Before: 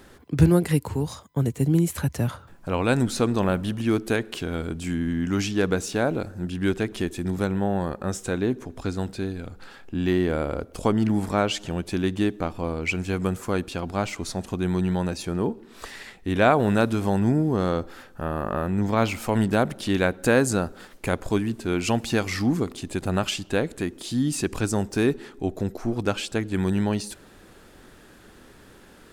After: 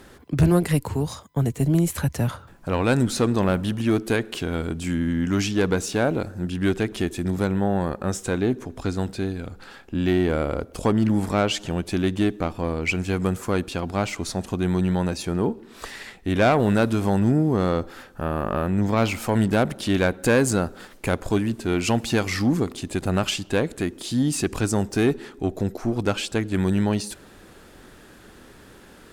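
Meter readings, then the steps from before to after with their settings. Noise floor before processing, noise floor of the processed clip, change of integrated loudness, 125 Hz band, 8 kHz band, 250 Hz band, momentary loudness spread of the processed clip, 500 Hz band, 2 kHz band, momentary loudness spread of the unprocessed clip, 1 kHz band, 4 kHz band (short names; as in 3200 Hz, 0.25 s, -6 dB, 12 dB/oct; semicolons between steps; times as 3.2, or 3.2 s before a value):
-50 dBFS, -48 dBFS, +1.5 dB, +2.0 dB, +2.0 dB, +1.5 dB, 8 LU, +1.5 dB, +1.0 dB, 9 LU, +0.5 dB, +2.0 dB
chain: tube stage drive 13 dB, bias 0.25; gain +3 dB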